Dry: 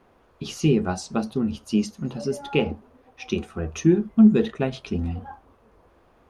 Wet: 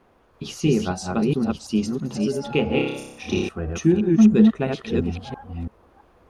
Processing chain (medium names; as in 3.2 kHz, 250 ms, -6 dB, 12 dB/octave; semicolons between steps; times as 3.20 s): chunks repeated in reverse 334 ms, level -2.5 dB; 2.71–3.49 s: flutter echo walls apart 5.2 m, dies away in 0.78 s